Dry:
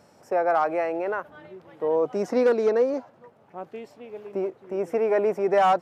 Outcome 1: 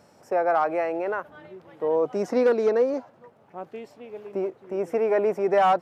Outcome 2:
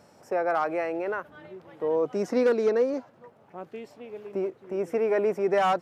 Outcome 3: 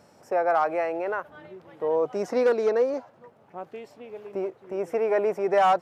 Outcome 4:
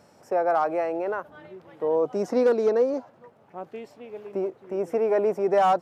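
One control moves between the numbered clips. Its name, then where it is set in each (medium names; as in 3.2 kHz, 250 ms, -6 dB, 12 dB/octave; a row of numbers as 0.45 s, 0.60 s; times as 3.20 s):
dynamic bell, frequency: 7.2 kHz, 760 Hz, 240 Hz, 2.1 kHz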